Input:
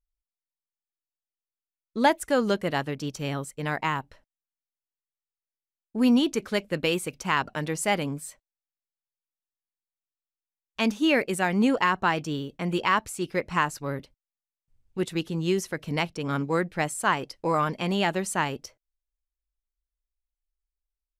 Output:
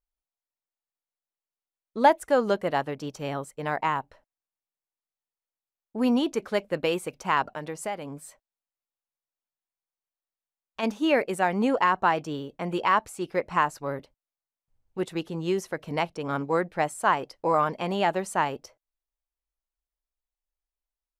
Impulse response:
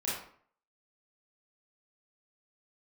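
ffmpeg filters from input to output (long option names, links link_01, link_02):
-filter_complex "[0:a]equalizer=frequency=740:width=0.64:gain=10,asplit=3[link_01][link_02][link_03];[link_01]afade=type=out:start_time=7.53:duration=0.02[link_04];[link_02]acompressor=threshold=-26dB:ratio=3,afade=type=in:start_time=7.53:duration=0.02,afade=type=out:start_time=10.82:duration=0.02[link_05];[link_03]afade=type=in:start_time=10.82:duration=0.02[link_06];[link_04][link_05][link_06]amix=inputs=3:normalize=0,volume=-6dB"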